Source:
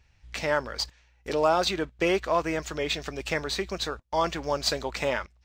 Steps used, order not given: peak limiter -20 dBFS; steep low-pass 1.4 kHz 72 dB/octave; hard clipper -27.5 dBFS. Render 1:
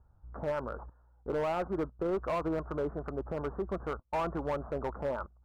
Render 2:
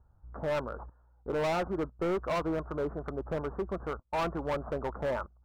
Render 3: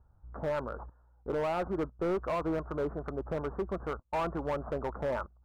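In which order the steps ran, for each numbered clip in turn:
peak limiter > steep low-pass > hard clipper; steep low-pass > hard clipper > peak limiter; steep low-pass > peak limiter > hard clipper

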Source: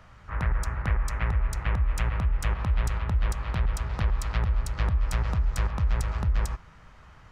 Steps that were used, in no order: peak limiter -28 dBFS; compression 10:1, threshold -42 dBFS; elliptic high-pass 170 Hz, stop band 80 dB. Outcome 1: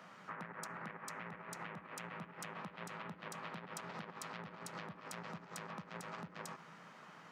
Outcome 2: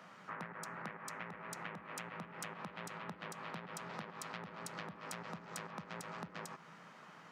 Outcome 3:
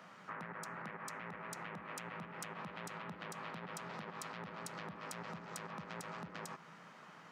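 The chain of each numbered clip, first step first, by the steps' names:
peak limiter > elliptic high-pass > compression; elliptic high-pass > compression > peak limiter; elliptic high-pass > peak limiter > compression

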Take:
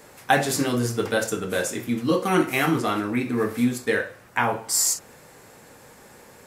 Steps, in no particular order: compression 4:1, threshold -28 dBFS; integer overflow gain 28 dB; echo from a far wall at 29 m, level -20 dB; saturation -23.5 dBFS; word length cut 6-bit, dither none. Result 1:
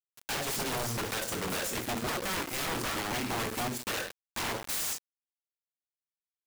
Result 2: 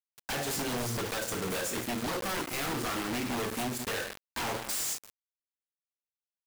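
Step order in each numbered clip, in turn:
compression > echo from a far wall > word length cut > saturation > integer overflow; echo from a far wall > compression > saturation > word length cut > integer overflow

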